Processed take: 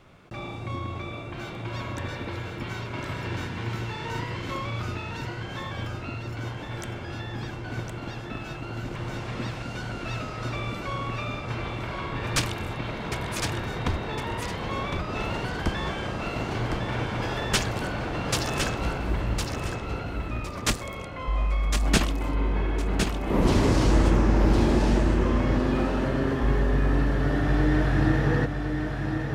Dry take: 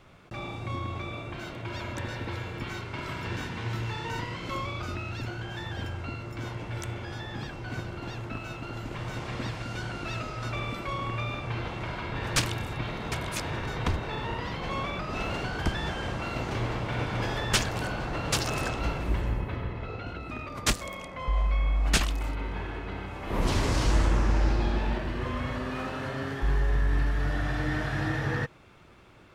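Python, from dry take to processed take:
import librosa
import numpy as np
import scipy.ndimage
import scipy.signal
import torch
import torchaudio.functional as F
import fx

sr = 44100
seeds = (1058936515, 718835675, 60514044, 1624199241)

y = fx.peak_eq(x, sr, hz=270.0, db=fx.steps((0.0, 2.0), (21.82, 9.0)), octaves=2.7)
y = fx.echo_feedback(y, sr, ms=1059, feedback_pct=23, wet_db=-5.5)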